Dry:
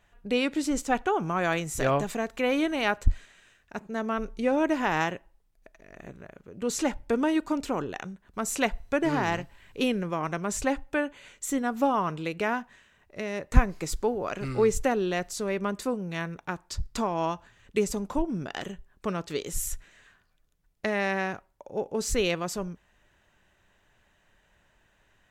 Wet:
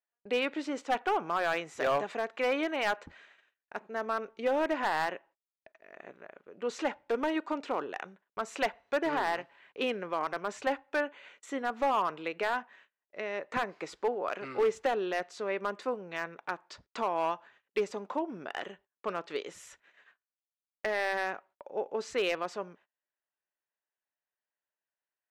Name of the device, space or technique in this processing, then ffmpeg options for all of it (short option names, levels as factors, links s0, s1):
walkie-talkie: -af "highpass=450,lowpass=2900,asoftclip=type=hard:threshold=0.0794,agate=range=0.0355:threshold=0.00126:ratio=16:detection=peak"